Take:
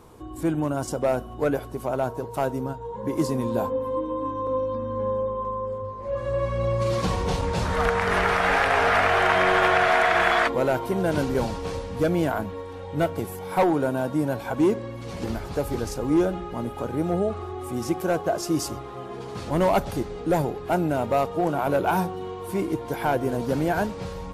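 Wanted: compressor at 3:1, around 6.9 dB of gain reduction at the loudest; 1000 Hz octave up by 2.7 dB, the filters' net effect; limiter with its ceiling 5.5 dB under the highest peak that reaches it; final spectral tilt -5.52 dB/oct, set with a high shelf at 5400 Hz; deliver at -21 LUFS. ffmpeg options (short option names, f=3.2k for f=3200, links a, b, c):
-af "equalizer=f=1k:t=o:g=4,highshelf=f=5.4k:g=-7,acompressor=threshold=-24dB:ratio=3,volume=8dB,alimiter=limit=-9.5dB:level=0:latency=1"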